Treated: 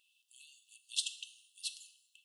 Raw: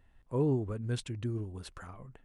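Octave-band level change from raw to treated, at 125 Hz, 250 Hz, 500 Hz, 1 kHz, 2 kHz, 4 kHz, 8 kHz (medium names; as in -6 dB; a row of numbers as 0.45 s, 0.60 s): under -40 dB, under -40 dB, under -40 dB, under -40 dB, -2.0 dB, +10.5 dB, +10.5 dB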